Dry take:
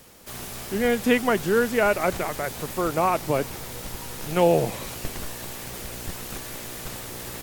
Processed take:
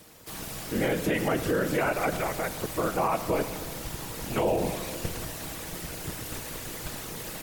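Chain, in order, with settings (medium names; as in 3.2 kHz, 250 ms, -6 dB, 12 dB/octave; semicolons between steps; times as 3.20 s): whisper effect; simulated room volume 3100 m³, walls mixed, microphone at 0.61 m; peak limiter -15 dBFS, peak gain reduction 9.5 dB; trim -2 dB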